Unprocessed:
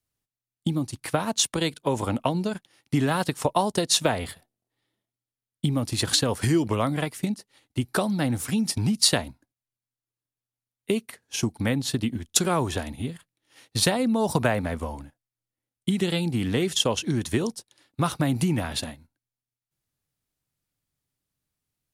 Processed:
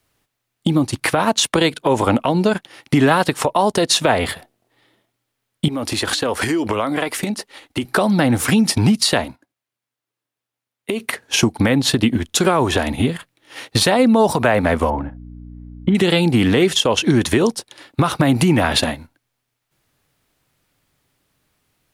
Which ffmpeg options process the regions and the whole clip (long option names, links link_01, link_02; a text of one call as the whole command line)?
ffmpeg -i in.wav -filter_complex "[0:a]asettb=1/sr,asplit=3[link_01][link_02][link_03];[link_01]atrim=end=5.684[link_04];[link_02]atrim=start=5.68:end=7.85,asetpts=PTS-STARTPTS,afade=type=in:duration=0.004:curve=qsin,afade=type=out:start_time=2.166:duration=0.004:curve=qsin,equalizer=frequency=140:width_type=o:width=0.79:gain=-11,acompressor=threshold=-35dB:ratio=6:attack=3.2:release=140:knee=1:detection=peak[link_05];[link_03]atrim=start=7.846[link_06];[link_04][link_05]acrossfade=duration=0.004:curve1=hsin:curve2=qsin[link_07];[link_07][link_06]acrossfade=duration=0.004:curve1=qsin:curve2=hsin,asettb=1/sr,asplit=3[link_08][link_09][link_10];[link_08]atrim=end=9.254[link_11];[link_09]atrim=start=9.25:end=11,asetpts=PTS-STARTPTS,afade=type=in:duration=0.004:curve=qsin,afade=type=out:start_time=1.746:duration=0.004:curve=qsin,highpass=frequency=150:poles=1,agate=range=-9dB:threshold=-57dB:ratio=16:release=100:detection=peak,acompressor=threshold=-38dB:ratio=6:attack=3.2:release=140:knee=1:detection=peak[link_12];[link_10]atrim=start=10.996[link_13];[link_11][link_12]acrossfade=duration=0.004:curve1=hsin:curve2=qsin[link_14];[link_14][link_13]acrossfade=duration=0.004:curve1=qsin:curve2=hsin,asettb=1/sr,asplit=3[link_15][link_16][link_17];[link_15]atrim=end=14.904[link_18];[link_16]atrim=start=14.9:end=15.95,asetpts=PTS-STARTPTS,afade=type=in:duration=0.004:curve=qsin,afade=type=out:start_time=1.046:duration=0.004:curve=qsin,lowpass=1500,aeval=exprs='val(0)+0.00316*(sin(2*PI*60*n/s)+sin(2*PI*2*60*n/s)/2+sin(2*PI*3*60*n/s)/3+sin(2*PI*4*60*n/s)/4+sin(2*PI*5*60*n/s)/5)':channel_layout=same[link_19];[link_17]atrim=start=15.946[link_20];[link_18][link_19]acrossfade=duration=0.004:curve1=hsin:curve2=qsin[link_21];[link_21][link_20]acrossfade=duration=0.004:curve1=qsin:curve2=hsin,bass=frequency=250:gain=-7,treble=frequency=4000:gain=-8,acompressor=threshold=-38dB:ratio=2,alimiter=level_in=25.5dB:limit=-1dB:release=50:level=0:latency=1,volume=-4dB" out.wav